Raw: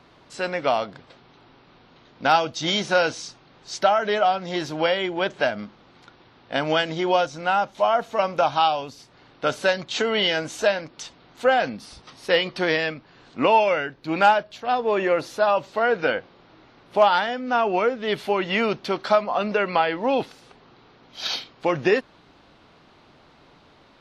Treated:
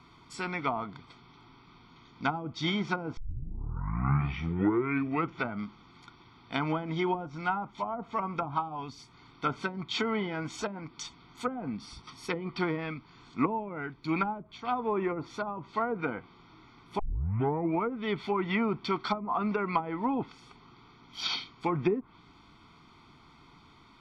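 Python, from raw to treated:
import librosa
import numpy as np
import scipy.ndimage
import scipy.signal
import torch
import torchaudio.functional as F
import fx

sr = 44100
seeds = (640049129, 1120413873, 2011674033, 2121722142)

y = fx.edit(x, sr, fx.tape_start(start_s=3.17, length_s=2.42),
    fx.tape_start(start_s=16.99, length_s=0.83), tone=tone)
y = fx.env_lowpass_down(y, sr, base_hz=400.0, full_db=-15.0)
y = fx.notch(y, sr, hz=780.0, q=12.0)
y = y + 0.9 * np.pad(y, (int(0.9 * sr / 1000.0), 0))[:len(y)]
y = y * 10.0 ** (-5.5 / 20.0)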